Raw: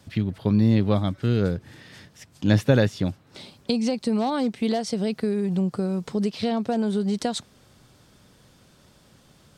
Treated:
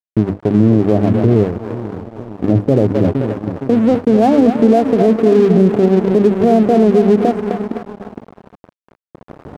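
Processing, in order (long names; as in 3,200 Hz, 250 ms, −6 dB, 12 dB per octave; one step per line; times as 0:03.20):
camcorder AGC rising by 8.8 dB per second
high-pass filter 54 Hz 12 dB per octave
mains-hum notches 50/100/150/200/250/300/350 Hz
echo with a time of its own for lows and highs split 360 Hz, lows 463 ms, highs 258 ms, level −8.5 dB
0:01.43–0:02.48: downward compressor 2 to 1, threshold −31 dBFS, peak gain reduction 7 dB
inverse Chebyshev low-pass filter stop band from 1,400 Hz, stop band 40 dB
comb filter 2.8 ms, depth 34%
noise gate with hold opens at −33 dBFS
dead-zone distortion −38.5 dBFS
low-shelf EQ 87 Hz −9.5 dB
boost into a limiter +16.5 dB
level −1 dB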